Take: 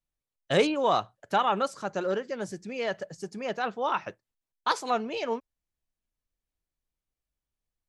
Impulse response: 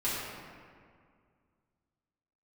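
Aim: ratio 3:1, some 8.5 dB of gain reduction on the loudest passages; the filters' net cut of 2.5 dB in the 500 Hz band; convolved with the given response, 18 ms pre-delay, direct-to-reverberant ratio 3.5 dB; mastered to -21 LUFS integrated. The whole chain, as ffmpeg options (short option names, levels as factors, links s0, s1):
-filter_complex "[0:a]equalizer=f=500:t=o:g=-3,acompressor=threshold=0.0251:ratio=3,asplit=2[s0][s1];[1:a]atrim=start_sample=2205,adelay=18[s2];[s1][s2]afir=irnorm=-1:irlink=0,volume=0.266[s3];[s0][s3]amix=inputs=2:normalize=0,volume=5.01"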